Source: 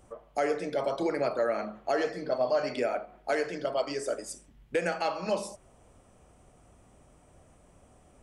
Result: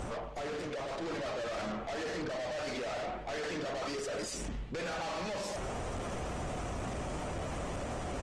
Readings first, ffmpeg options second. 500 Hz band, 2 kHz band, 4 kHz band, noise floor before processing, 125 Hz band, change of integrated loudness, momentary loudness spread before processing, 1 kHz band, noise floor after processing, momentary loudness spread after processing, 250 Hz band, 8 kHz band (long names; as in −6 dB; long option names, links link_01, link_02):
−7.5 dB, −3.0 dB, +1.0 dB, −60 dBFS, +6.0 dB, −7.0 dB, 7 LU, −4.0 dB, −40 dBFS, 2 LU, −3.0 dB, +1.5 dB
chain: -filter_complex "[0:a]areverse,acompressor=threshold=-43dB:ratio=6,areverse,asplit=2[link_01][link_02];[link_02]highpass=frequency=720:poles=1,volume=15dB,asoftclip=type=tanh:threshold=-30.5dB[link_03];[link_01][link_03]amix=inputs=2:normalize=0,lowpass=frequency=5500:poles=1,volume=-6dB,lowshelf=frequency=180:gain=8,aeval=exprs='(tanh(708*val(0)+0.25)-tanh(0.25))/708':channel_layout=same,lowpass=frequency=7800:width=0.5412,lowpass=frequency=7800:width=1.3066,lowshelf=frequency=450:gain=5,asplit=2[link_04][link_05];[link_05]adelay=195,lowpass=frequency=1300:poles=1,volume=-19.5dB,asplit=2[link_06][link_07];[link_07]adelay=195,lowpass=frequency=1300:poles=1,volume=0.52,asplit=2[link_08][link_09];[link_09]adelay=195,lowpass=frequency=1300:poles=1,volume=0.52,asplit=2[link_10][link_11];[link_11]adelay=195,lowpass=frequency=1300:poles=1,volume=0.52[link_12];[link_06][link_08][link_10][link_12]amix=inputs=4:normalize=0[link_13];[link_04][link_13]amix=inputs=2:normalize=0,acontrast=68,alimiter=level_in=23dB:limit=-24dB:level=0:latency=1,volume=-23dB,volume=15.5dB" -ar 48000 -c:a libopus -b:a 20k